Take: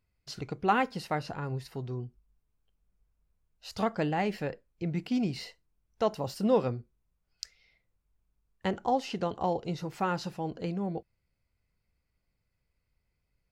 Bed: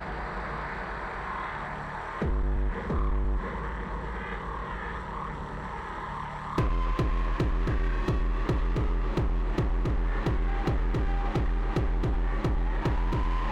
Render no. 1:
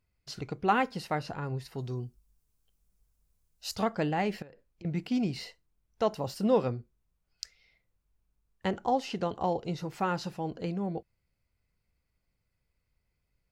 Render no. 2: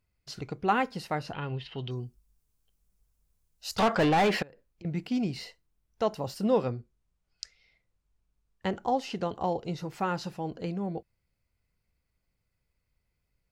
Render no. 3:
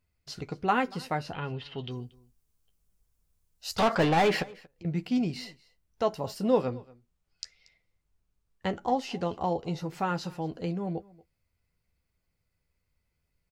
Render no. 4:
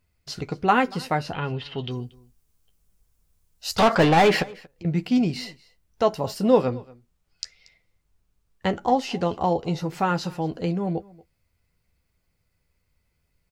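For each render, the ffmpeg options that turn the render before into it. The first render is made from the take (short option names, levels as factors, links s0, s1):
-filter_complex "[0:a]asettb=1/sr,asplit=3[s0][s1][s2];[s0]atrim=end=1.784[s3];[s1]atrim=start=1.78:end=3.76,asetpts=PTS-STARTPTS,afade=t=in:d=0.004:c=qsin,afade=t=out:st=1.976:d=0.004:c=qsin,bass=f=250:g=1,treble=f=4000:g=12[s4];[s2]atrim=start=3.756[s5];[s3][s4]acrossfade=d=0.004:c1=hsin:c2=qsin[s6];[s6][s5]acrossfade=d=0.004:c1=qsin:c2=hsin,asettb=1/sr,asplit=3[s7][s8][s9];[s7]atrim=end=4.424[s10];[s8]atrim=start=4.42:end=4.85,asetpts=PTS-STARTPTS,afade=t=in:d=0.004:c=qsin,afade=t=out:st=0.426:d=0.004:c=qsin,acompressor=threshold=0.00501:ratio=20:attack=3.2:release=140:knee=1:detection=peak[s11];[s9]atrim=start=4.846[s12];[s10][s11]acrossfade=d=0.004:c1=hsin:c2=qsin[s13];[s13][s12]acrossfade=d=0.004:c1=qsin:c2=hsin"
-filter_complex "[0:a]asettb=1/sr,asplit=3[s0][s1][s2];[s0]atrim=end=1.334[s3];[s1]atrim=start=1.33:end=1.91,asetpts=PTS-STARTPTS,afade=t=in:d=0.004:c=qsin,afade=t=out:st=0.576:d=0.004:c=qsin,lowpass=f=3100:t=q:w=11[s4];[s2]atrim=start=1.906[s5];[s3][s4]acrossfade=d=0.004:c1=hsin:c2=qsin[s6];[s6][s5]acrossfade=d=0.004:c1=qsin:c2=hsin,asettb=1/sr,asplit=3[s7][s8][s9];[s7]atrim=end=3.784[s10];[s8]atrim=start=3.78:end=4.43,asetpts=PTS-STARTPTS,afade=t=in:d=0.004:c=qsin,afade=t=out:st=0.646:d=0.004:c=qsin,asplit=2[s11][s12];[s12]highpass=f=720:p=1,volume=20,asoftclip=type=tanh:threshold=0.158[s13];[s11][s13]amix=inputs=2:normalize=0,lowpass=f=3100:p=1,volume=0.501[s14];[s9]atrim=start=4.426[s15];[s10][s14]acrossfade=d=0.004:c1=hsin:c2=qsin[s16];[s16][s15]acrossfade=d=0.004:c1=qsin:c2=hsin,asettb=1/sr,asplit=3[s17][s18][s19];[s17]atrim=end=6.644[s20];[s18]atrim=start=6.64:end=8.72,asetpts=PTS-STARTPTS,afade=t=in:d=0.004:c=qsin,afade=t=out:st=2.076:d=0.004:c=qsin,lowpass=9300[s21];[s19]atrim=start=8.716[s22];[s20][s21]acrossfade=d=0.004:c1=hsin:c2=qsin[s23];[s23][s22]acrossfade=d=0.004:c1=qsin:c2=hsin"
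-filter_complex "[0:a]asplit=2[s0][s1];[s1]adelay=12,volume=0.335[s2];[s0][s2]amix=inputs=2:normalize=0,aecho=1:1:233:0.0708"
-af "volume=2.11"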